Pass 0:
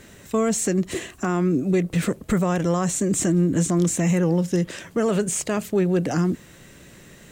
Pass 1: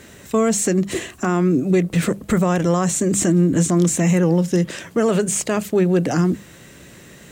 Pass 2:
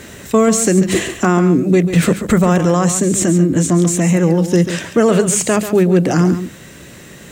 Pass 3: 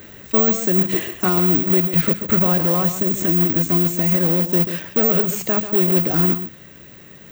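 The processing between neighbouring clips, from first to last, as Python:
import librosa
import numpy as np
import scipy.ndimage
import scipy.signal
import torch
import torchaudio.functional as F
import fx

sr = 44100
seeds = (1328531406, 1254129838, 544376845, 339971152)

y1 = scipy.signal.sosfilt(scipy.signal.butter(2, 45.0, 'highpass', fs=sr, output='sos'), x)
y1 = fx.hum_notches(y1, sr, base_hz=50, count=4)
y1 = F.gain(torch.from_numpy(y1), 4.0).numpy()
y2 = fx.rider(y1, sr, range_db=10, speed_s=0.5)
y2 = y2 + 10.0 ** (-10.5 / 20.0) * np.pad(y2, (int(139 * sr / 1000.0), 0))[:len(y2)]
y2 = F.gain(torch.from_numpy(y2), 4.5).numpy()
y3 = fx.quant_companded(y2, sr, bits=4)
y3 = fx.air_absorb(y3, sr, metres=83.0)
y3 = (np.kron(y3[::2], np.eye(2)[0]) * 2)[:len(y3)]
y3 = F.gain(torch.from_numpy(y3), -7.5).numpy()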